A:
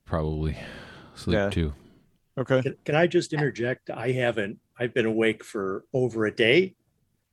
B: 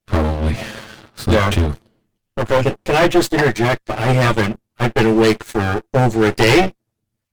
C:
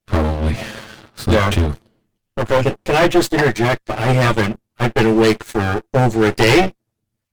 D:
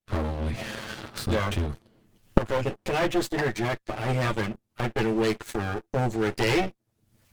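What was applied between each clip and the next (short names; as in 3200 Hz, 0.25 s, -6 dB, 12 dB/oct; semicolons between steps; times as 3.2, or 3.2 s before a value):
minimum comb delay 9.2 ms; sample leveller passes 3; gain +2.5 dB
nothing audible
recorder AGC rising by 48 dB/s; gain -11.5 dB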